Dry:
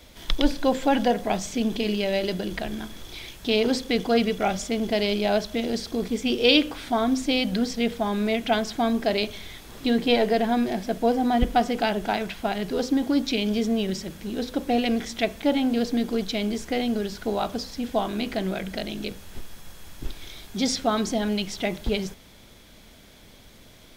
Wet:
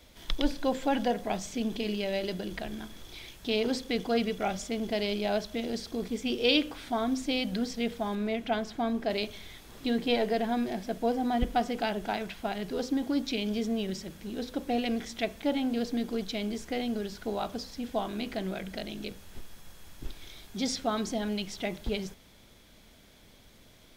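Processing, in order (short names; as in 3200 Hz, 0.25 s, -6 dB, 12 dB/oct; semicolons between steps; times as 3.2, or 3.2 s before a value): 8.15–9.1 high shelf 3500 Hz -7.5 dB; gain -6.5 dB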